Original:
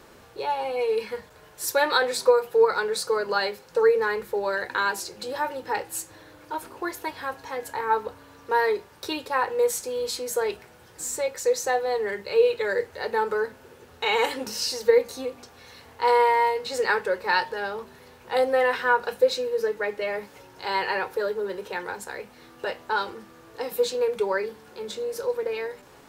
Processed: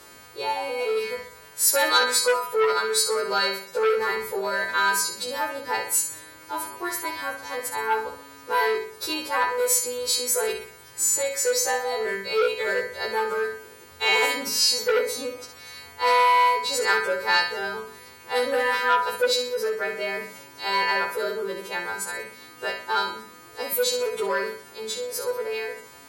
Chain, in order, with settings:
every partial snapped to a pitch grid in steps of 2 semitones
flutter between parallel walls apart 10.6 metres, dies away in 0.53 s
saturating transformer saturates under 1,600 Hz

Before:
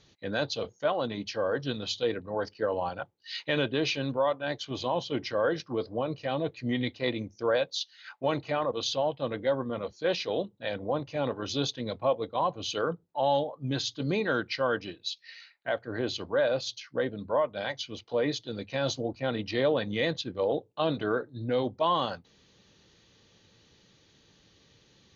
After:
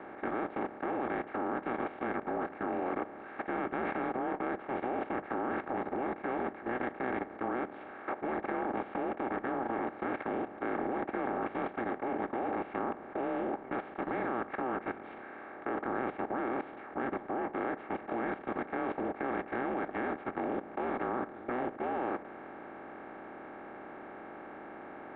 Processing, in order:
compressor on every frequency bin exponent 0.2
single-sideband voice off tune −250 Hz 570–2,200 Hz
output level in coarse steps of 13 dB
level −7.5 dB

